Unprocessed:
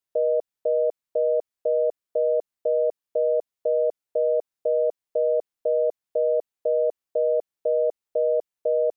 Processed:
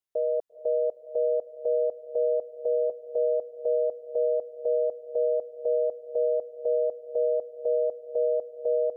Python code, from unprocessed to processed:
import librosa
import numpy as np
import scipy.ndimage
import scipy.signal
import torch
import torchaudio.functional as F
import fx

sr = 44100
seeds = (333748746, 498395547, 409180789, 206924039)

y = fx.doubler(x, sr, ms=14.0, db=-11.0, at=(2.52, 3.18))
y = fx.echo_diffused(y, sr, ms=467, feedback_pct=64, wet_db=-13.5)
y = y * librosa.db_to_amplitude(-4.5)